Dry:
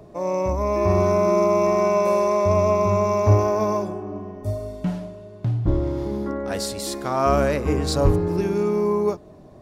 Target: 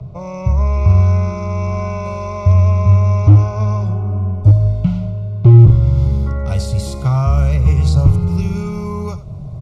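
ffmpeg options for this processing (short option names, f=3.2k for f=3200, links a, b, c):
-filter_complex "[0:a]acrossover=split=100|1300[a][b][c];[a]acompressor=threshold=-35dB:ratio=4[d];[b]acompressor=threshold=-30dB:ratio=4[e];[c]acompressor=threshold=-37dB:ratio=4[f];[d][e][f]amix=inputs=3:normalize=0,lowshelf=f=190:t=q:w=3:g=14,asoftclip=type=hard:threshold=-7dB,asuperstop=centerf=1700:order=20:qfactor=3.9,aecho=1:1:85:0.168,dynaudnorm=f=310:g=3:m=3.5dB,asetnsamples=n=441:p=0,asendcmd='5.59 lowpass f 11000',lowpass=4.7k,volume=2dB"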